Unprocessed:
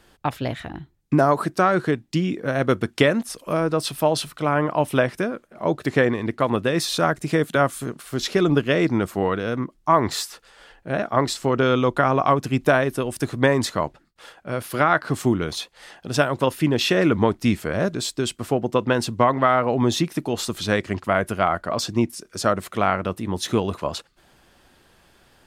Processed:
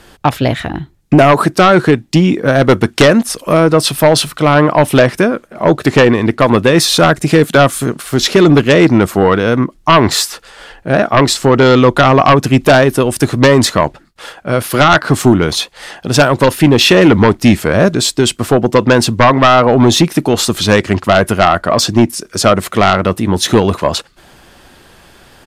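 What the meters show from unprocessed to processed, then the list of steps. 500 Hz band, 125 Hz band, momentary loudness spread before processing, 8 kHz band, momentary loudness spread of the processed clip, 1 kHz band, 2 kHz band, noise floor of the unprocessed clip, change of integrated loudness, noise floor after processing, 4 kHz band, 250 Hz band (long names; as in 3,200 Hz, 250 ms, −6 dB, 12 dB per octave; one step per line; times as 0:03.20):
+11.5 dB, +12.5 dB, 9 LU, +13.5 dB, 7 LU, +10.5 dB, +11.0 dB, −59 dBFS, +11.5 dB, −46 dBFS, +14.0 dB, +12.0 dB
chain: downsampling to 32,000 Hz
sine wavefolder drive 8 dB, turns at −3.5 dBFS
level +2 dB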